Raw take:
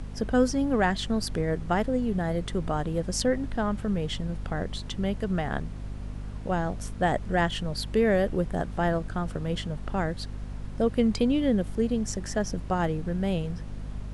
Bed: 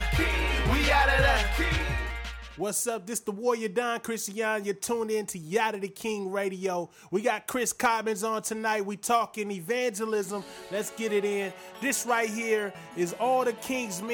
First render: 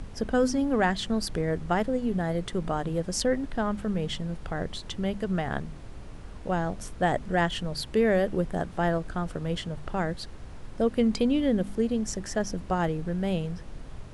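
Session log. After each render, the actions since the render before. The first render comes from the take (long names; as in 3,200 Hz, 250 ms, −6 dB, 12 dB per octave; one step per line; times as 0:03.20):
hum removal 50 Hz, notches 5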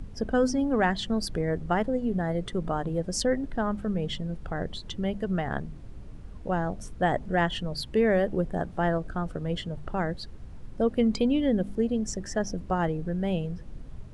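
broadband denoise 9 dB, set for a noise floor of −42 dBFS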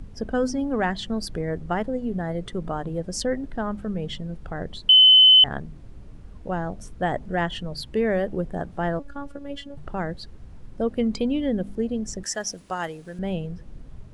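0:04.89–0:05.44: beep over 3,040 Hz −9 dBFS
0:08.99–0:09.77: phases set to zero 283 Hz
0:12.23–0:13.19: spectral tilt +4 dB per octave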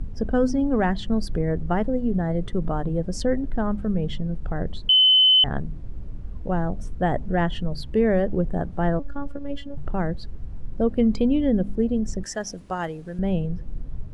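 spectral tilt −2 dB per octave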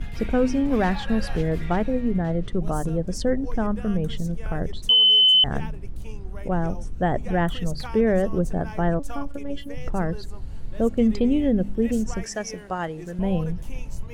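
mix in bed −14 dB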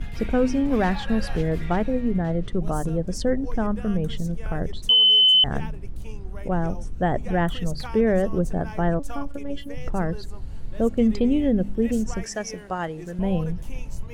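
no processing that can be heard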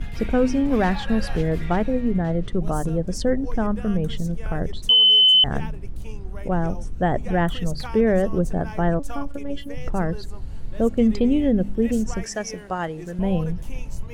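level +1.5 dB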